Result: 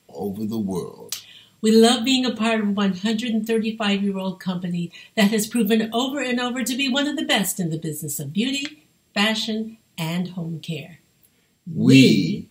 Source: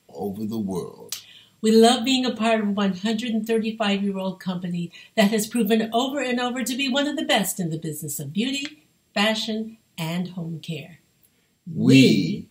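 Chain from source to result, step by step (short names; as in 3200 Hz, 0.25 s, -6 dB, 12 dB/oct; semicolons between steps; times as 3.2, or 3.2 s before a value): dynamic EQ 660 Hz, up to -6 dB, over -36 dBFS, Q 2.2; gain +2 dB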